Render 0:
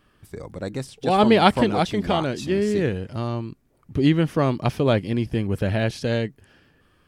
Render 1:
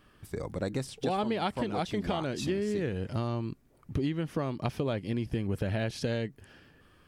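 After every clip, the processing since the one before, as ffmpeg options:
ffmpeg -i in.wav -af "acompressor=threshold=-27dB:ratio=12" out.wav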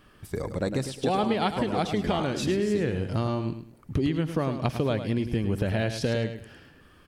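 ffmpeg -i in.wav -af "aecho=1:1:105|210|315:0.335|0.0904|0.0244,volume=4.5dB" out.wav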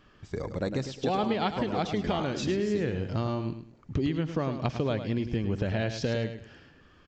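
ffmpeg -i in.wav -af "aresample=16000,aresample=44100,volume=-2.5dB" out.wav

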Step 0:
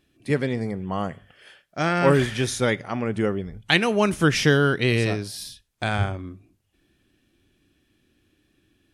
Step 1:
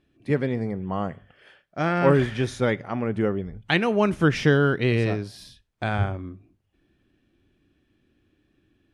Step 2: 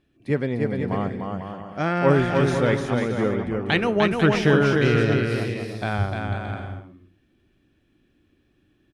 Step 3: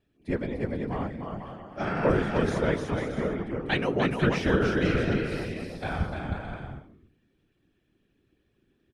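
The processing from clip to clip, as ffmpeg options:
ffmpeg -i in.wav -af "lowpass=frequency=1800:poles=1" out.wav
ffmpeg -i in.wav -af "aecho=1:1:300|495|621.8|704.1|757.7:0.631|0.398|0.251|0.158|0.1" out.wav
ffmpeg -i in.wav -af "afftfilt=real='hypot(re,im)*cos(2*PI*random(0))':imag='hypot(re,im)*sin(2*PI*random(1))':win_size=512:overlap=0.75" out.wav

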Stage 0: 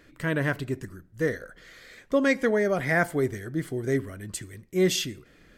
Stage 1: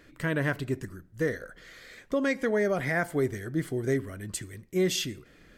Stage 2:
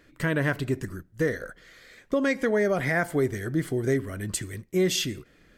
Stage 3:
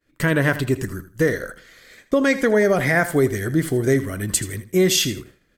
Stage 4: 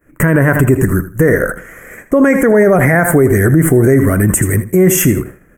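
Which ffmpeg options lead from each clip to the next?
ffmpeg -i in.wav -af "alimiter=limit=-17.5dB:level=0:latency=1:release=201" out.wav
ffmpeg -i in.wav -filter_complex "[0:a]agate=range=-9dB:threshold=-44dB:ratio=16:detection=peak,asplit=2[link_01][link_02];[link_02]acompressor=threshold=-35dB:ratio=6,volume=1.5dB[link_03];[link_01][link_03]amix=inputs=2:normalize=0" out.wav
ffmpeg -i in.wav -af "agate=range=-33dB:threshold=-47dB:ratio=3:detection=peak,highshelf=frequency=7500:gain=6.5,aecho=1:1:80|160:0.2|0.0439,volume=6.5dB" out.wav
ffmpeg -i in.wav -af "asuperstop=centerf=4100:order=4:qfactor=0.61,equalizer=frequency=170:width_type=o:width=0.29:gain=3.5,alimiter=level_in=18dB:limit=-1dB:release=50:level=0:latency=1,volume=-1dB" out.wav

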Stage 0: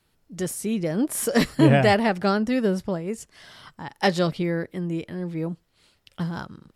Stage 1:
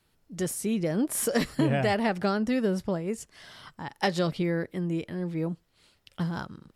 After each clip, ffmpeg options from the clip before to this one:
ffmpeg -i in.wav -af "acompressor=threshold=-20dB:ratio=5,volume=-1.5dB" out.wav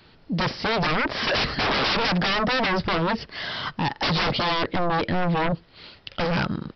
ffmpeg -i in.wav -af "lowshelf=frequency=65:gain=-7,aresample=11025,aeval=exprs='0.0562*sin(PI/2*2.82*val(0)/0.0562)':channel_layout=same,aresample=44100,volume=5.5dB" out.wav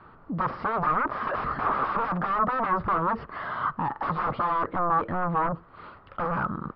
ffmpeg -i in.wav -af "alimiter=level_in=2.5dB:limit=-24dB:level=0:latency=1:release=17,volume=-2.5dB,lowpass=frequency=1200:width_type=q:width=5.2" out.wav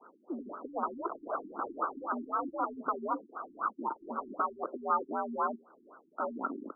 ffmpeg -i in.wav -af "highpass=frequency=200:width_type=q:width=0.5412,highpass=frequency=200:width_type=q:width=1.307,lowpass=frequency=2400:width_type=q:width=0.5176,lowpass=frequency=2400:width_type=q:width=0.7071,lowpass=frequency=2400:width_type=q:width=1.932,afreqshift=65,acrusher=bits=6:mode=log:mix=0:aa=0.000001,afftfilt=real='re*lt(b*sr/1024,360*pow(1600/360,0.5+0.5*sin(2*PI*3.9*pts/sr)))':imag='im*lt(b*sr/1024,360*pow(1600/360,0.5+0.5*sin(2*PI*3.9*pts/sr)))':win_size=1024:overlap=0.75,volume=-3.5dB" out.wav

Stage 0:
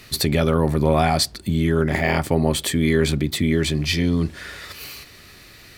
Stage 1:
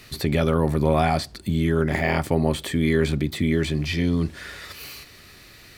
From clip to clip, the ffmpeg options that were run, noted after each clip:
ffmpeg -i in.wav -filter_complex "[0:a]acrossover=split=2800[link_01][link_02];[link_02]acompressor=threshold=-31dB:ratio=4:attack=1:release=60[link_03];[link_01][link_03]amix=inputs=2:normalize=0,volume=-2dB" out.wav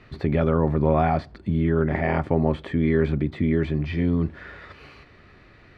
ffmpeg -i in.wav -af "lowpass=1700" out.wav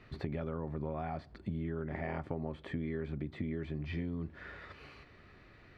ffmpeg -i in.wav -af "acompressor=threshold=-27dB:ratio=6,volume=-7dB" out.wav

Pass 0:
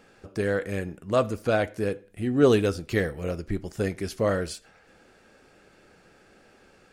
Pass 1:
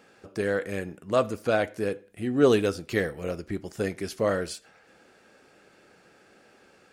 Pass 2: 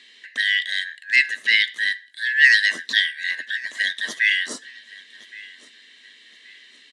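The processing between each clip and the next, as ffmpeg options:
ffmpeg -i in.wav -af "highpass=frequency=170:poles=1" out.wav
ffmpeg -i in.wav -af "afftfilt=real='real(if(lt(b,272),68*(eq(floor(b/68),0)*3+eq(floor(b/68),1)*0+eq(floor(b/68),2)*1+eq(floor(b/68),3)*2)+mod(b,68),b),0)':imag='imag(if(lt(b,272),68*(eq(floor(b/68),0)*3+eq(floor(b/68),1)*0+eq(floor(b/68),2)*1+eq(floor(b/68),3)*2)+mod(b,68),b),0)':win_size=2048:overlap=0.75,highpass=frequency=200:width=0.5412,highpass=frequency=200:width=1.3066,equalizer=frequency=250:width_type=q:width=4:gain=7,equalizer=frequency=810:width_type=q:width=4:gain=-10,equalizer=frequency=1500:width_type=q:width=4:gain=-4,equalizer=frequency=3800:width_type=q:width=4:gain=9,lowpass=frequency=9300:width=0.5412,lowpass=frequency=9300:width=1.3066,aecho=1:1:1119|2238:0.0891|0.0294,volume=6dB" out.wav

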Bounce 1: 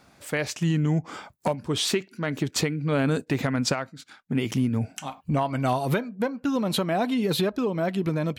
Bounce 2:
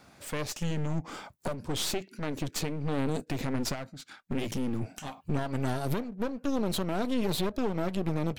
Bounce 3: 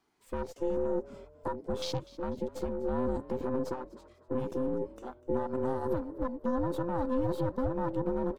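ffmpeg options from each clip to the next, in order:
ffmpeg -i in.wav -filter_complex "[0:a]acrossover=split=760|3100[link_01][link_02][link_03];[link_02]acompressor=threshold=-41dB:ratio=6[link_04];[link_01][link_04][link_03]amix=inputs=3:normalize=0,alimiter=limit=-18.5dB:level=0:latency=1:release=28,aeval=exprs='clip(val(0),-1,0.00841)':channel_layout=same" out.wav
ffmpeg -i in.wav -filter_complex "[0:a]afftfilt=real='real(if(between(b,1,1008),(2*floor((b-1)/24)+1)*24-b,b),0)':imag='imag(if(between(b,1,1008),(2*floor((b-1)/24)+1)*24-b,b),0)*if(between(b,1,1008),-1,1)':win_size=2048:overlap=0.75,afwtdn=0.0178,asplit=4[link_01][link_02][link_03][link_04];[link_02]adelay=247,afreqshift=42,volume=-19.5dB[link_05];[link_03]adelay=494,afreqshift=84,volume=-27.7dB[link_06];[link_04]adelay=741,afreqshift=126,volume=-35.9dB[link_07];[link_01][link_05][link_06][link_07]amix=inputs=4:normalize=0,volume=-2.5dB" out.wav

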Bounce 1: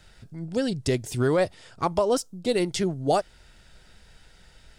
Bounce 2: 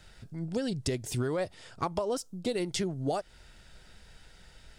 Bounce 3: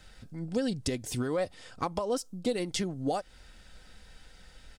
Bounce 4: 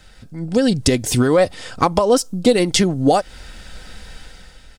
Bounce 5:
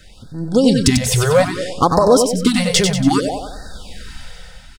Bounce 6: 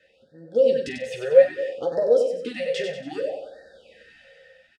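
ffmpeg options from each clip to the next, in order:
ffmpeg -i in.wav -af "acompressor=threshold=-26dB:ratio=12,volume=-1dB" out.wav
ffmpeg -i in.wav -af "aecho=1:1:3.9:0.35" out.wav
ffmpeg -i in.wav -af "dynaudnorm=framelen=120:gausssize=9:maxgain=9dB,volume=7dB" out.wav
ffmpeg -i in.wav -filter_complex "[0:a]volume=7dB,asoftclip=hard,volume=-7dB,asplit=2[link_01][link_02];[link_02]aecho=0:1:94|188|282|376|470|564:0.531|0.25|0.117|0.0551|0.0259|0.0122[link_03];[link_01][link_03]amix=inputs=2:normalize=0,afftfilt=real='re*(1-between(b*sr/1024,270*pow(2700/270,0.5+0.5*sin(2*PI*0.62*pts/sr))/1.41,270*pow(2700/270,0.5+0.5*sin(2*PI*0.62*pts/sr))*1.41))':imag='im*(1-between(b*sr/1024,270*pow(2700/270,0.5+0.5*sin(2*PI*0.62*pts/sr))/1.41,270*pow(2700/270,0.5+0.5*sin(2*PI*0.62*pts/sr))*1.41))':win_size=1024:overlap=0.75,volume=2.5dB" out.wav
ffmpeg -i in.wav -filter_complex "[0:a]asplit=3[link_01][link_02][link_03];[link_01]bandpass=frequency=530:width_type=q:width=8,volume=0dB[link_04];[link_02]bandpass=frequency=1840:width_type=q:width=8,volume=-6dB[link_05];[link_03]bandpass=frequency=2480:width_type=q:width=8,volume=-9dB[link_06];[link_04][link_05][link_06]amix=inputs=3:normalize=0,aecho=1:1:13|48:0.562|0.316,volume=-1dB" out.wav

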